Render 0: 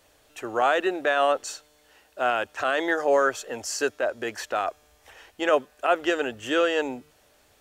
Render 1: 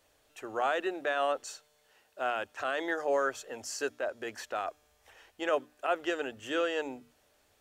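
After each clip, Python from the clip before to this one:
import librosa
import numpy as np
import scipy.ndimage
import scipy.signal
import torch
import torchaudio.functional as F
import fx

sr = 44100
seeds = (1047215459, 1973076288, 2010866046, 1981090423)

y = fx.hum_notches(x, sr, base_hz=60, count=5)
y = y * librosa.db_to_amplitude(-8.0)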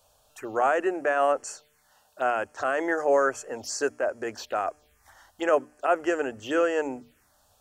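y = fx.env_phaser(x, sr, low_hz=320.0, high_hz=3700.0, full_db=-35.0)
y = y * librosa.db_to_amplitude(7.5)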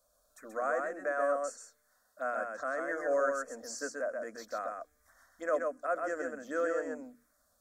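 y = fx.fixed_phaser(x, sr, hz=570.0, stages=8)
y = y + 10.0 ** (-4.0 / 20.0) * np.pad(y, (int(131 * sr / 1000.0), 0))[:len(y)]
y = y * librosa.db_to_amplitude(-7.5)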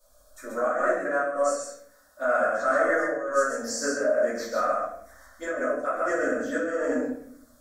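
y = fx.over_compress(x, sr, threshold_db=-34.0, ratio=-0.5)
y = fx.room_shoebox(y, sr, seeds[0], volume_m3=100.0, walls='mixed', distance_m=2.6)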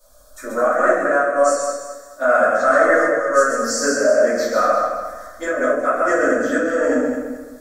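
y = fx.echo_feedback(x, sr, ms=216, feedback_pct=33, wet_db=-9)
y = y * librosa.db_to_amplitude(8.5)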